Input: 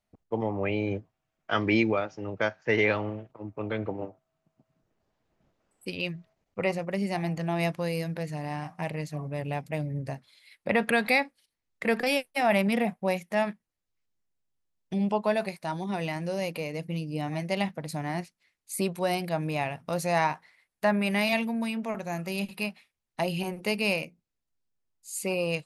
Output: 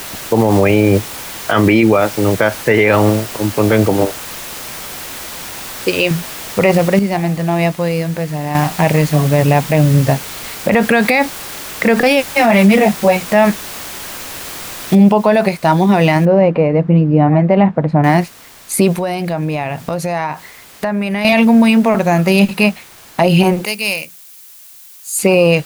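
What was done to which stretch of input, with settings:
4.06–6.11 s: resonant low shelf 300 Hz -7.5 dB, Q 1.5
6.99–8.55 s: gain -8.5 dB
9.34–9.87 s: low-pass 6.8 kHz
10.74–11.14 s: expander -33 dBFS
12.32–13.30 s: three-phase chorus
14.95 s: noise floor step -45 dB -57 dB
16.25–18.04 s: low-pass 1.3 kHz
18.94–21.25 s: compression 5:1, threshold -38 dBFS
23.65–25.19 s: pre-emphasis filter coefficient 0.9
whole clip: treble shelf 3.1 kHz -7 dB; loudness maximiser +23 dB; trim -1 dB

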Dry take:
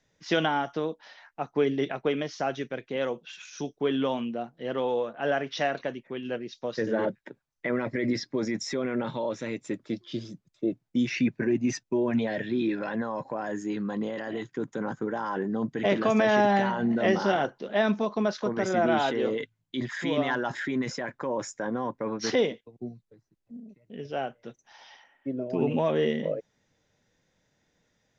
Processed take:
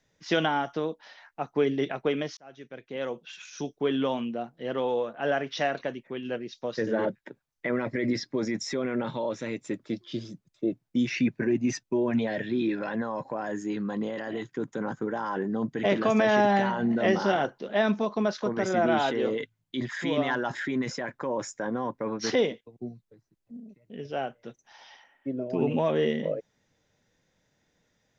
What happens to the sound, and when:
2.37–3.34 s: fade in

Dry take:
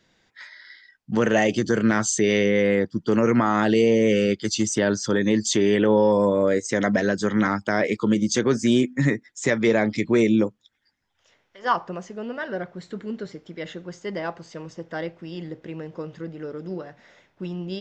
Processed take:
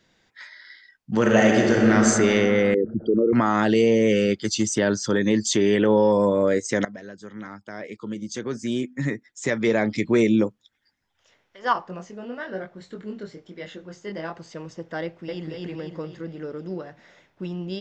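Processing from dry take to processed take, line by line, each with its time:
1.15–2.06 s: reverb throw, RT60 2.9 s, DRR -0.5 dB
2.74–3.33 s: resonances exaggerated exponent 3
6.85–10.03 s: fade in quadratic, from -18 dB
11.73–14.34 s: chorus 1 Hz, delay 20 ms, depth 4.7 ms
15.03–15.50 s: echo throw 250 ms, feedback 50%, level -0.5 dB

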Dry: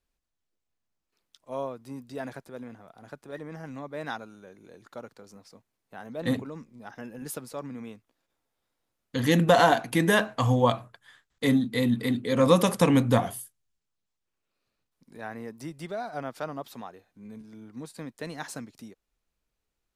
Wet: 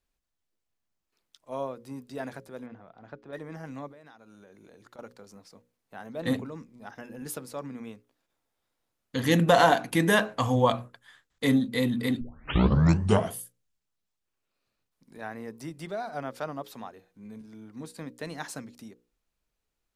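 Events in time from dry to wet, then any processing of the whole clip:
2.66–3.33 s: distance through air 210 m
3.88–4.99 s: compression 12:1, threshold -47 dBFS
12.21 s: tape start 1.10 s
whole clip: hum notches 60/120/180/240/300/360/420/480/540 Hz

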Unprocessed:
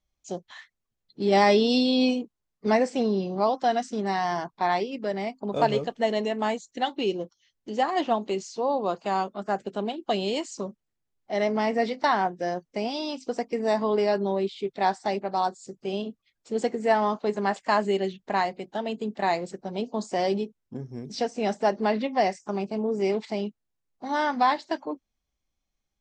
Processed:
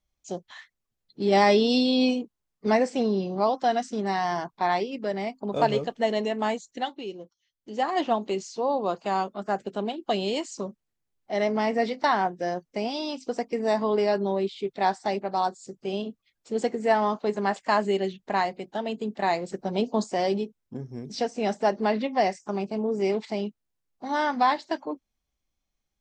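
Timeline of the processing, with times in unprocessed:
6.70–7.91 s: dip -9.5 dB, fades 0.32 s
19.52–20.04 s: gain +4.5 dB

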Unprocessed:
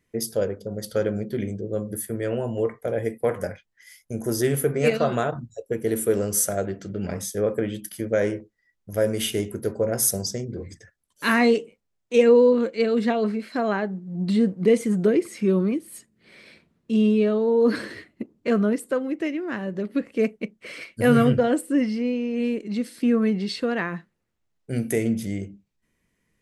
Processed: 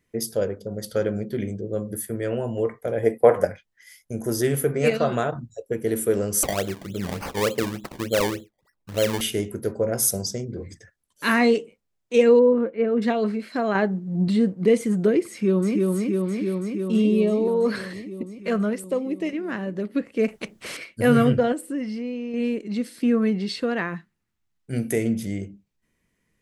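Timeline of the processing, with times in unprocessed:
3.03–3.45 s: peaking EQ 710 Hz +11 dB 2 oct
6.43–9.21 s: decimation with a swept rate 23× 3.4 Hz
9.94–10.52 s: band-stop 1.8 kHz, Q 7.2
12.39–13.02 s: Gaussian low-pass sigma 4 samples
13.75–14.28 s: gain +5 dB
15.29–15.88 s: echo throw 330 ms, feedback 80%, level -2 dB
17.02–19.33 s: LFO notch square 1.1 Hz 310–1500 Hz
20.28–20.77 s: spectrum-flattening compressor 2:1
21.52–22.34 s: compression 2:1, threshold -30 dBFS
23.94–24.73 s: peaking EQ 520 Hz -11 dB 0.88 oct

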